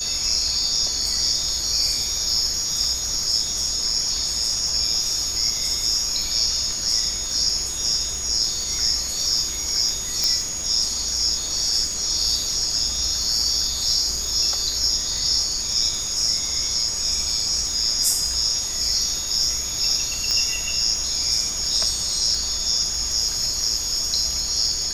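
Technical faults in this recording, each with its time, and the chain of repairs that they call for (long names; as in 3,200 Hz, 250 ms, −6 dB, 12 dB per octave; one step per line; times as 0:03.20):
surface crackle 33 per second −28 dBFS
whistle 6,700 Hz −27 dBFS
0:10.24: click −6 dBFS
0:20.31: click −9 dBFS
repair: click removal
notch filter 6,700 Hz, Q 30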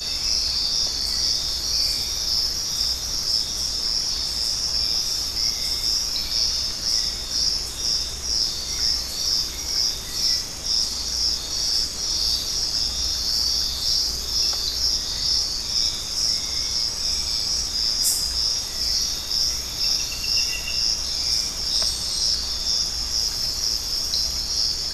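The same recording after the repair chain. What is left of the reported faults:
0:10.24: click
0:20.31: click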